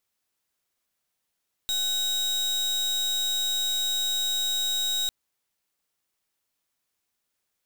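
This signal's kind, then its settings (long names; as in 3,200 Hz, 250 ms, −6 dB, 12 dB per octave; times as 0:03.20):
pulse wave 3,800 Hz, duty 36% −26.5 dBFS 3.40 s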